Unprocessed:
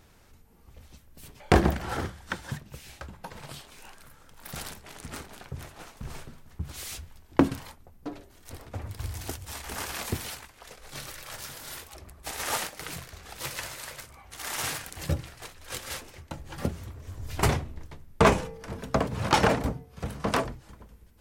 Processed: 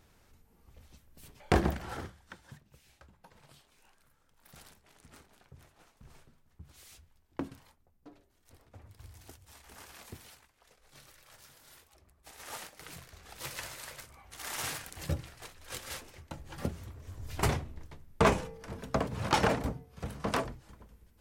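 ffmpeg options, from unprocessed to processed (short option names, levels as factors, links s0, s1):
-af "volume=1.88,afade=t=out:st=1.73:d=0.59:silence=0.298538,afade=t=in:st=12.36:d=1.26:silence=0.266073"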